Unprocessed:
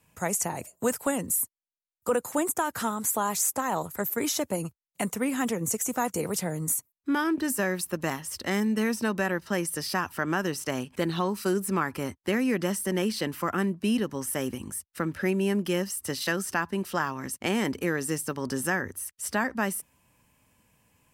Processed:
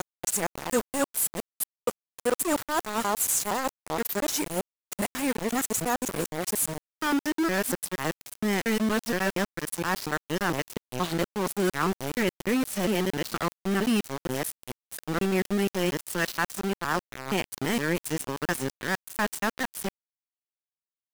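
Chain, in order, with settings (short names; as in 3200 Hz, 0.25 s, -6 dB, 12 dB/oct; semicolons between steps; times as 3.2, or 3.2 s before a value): local time reversal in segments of 0.234 s; sample gate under -28 dBFS; gain +1 dB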